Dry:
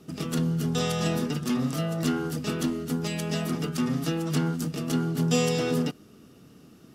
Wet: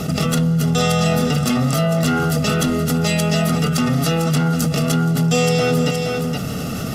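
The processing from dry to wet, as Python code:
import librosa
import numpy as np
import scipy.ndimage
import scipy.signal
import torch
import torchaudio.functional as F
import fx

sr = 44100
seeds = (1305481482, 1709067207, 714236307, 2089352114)

p1 = x + 0.69 * np.pad(x, (int(1.5 * sr / 1000.0), 0))[:len(x)]
p2 = 10.0 ** (-21.0 / 20.0) * np.tanh(p1 / 10.0 ** (-21.0 / 20.0))
p3 = p1 + (p2 * librosa.db_to_amplitude(-8.0))
p4 = p3 + 10.0 ** (-15.0 / 20.0) * np.pad(p3, (int(470 * sr / 1000.0), 0))[:len(p3)]
p5 = fx.env_flatten(p4, sr, amount_pct=70)
y = p5 * librosa.db_to_amplitude(3.0)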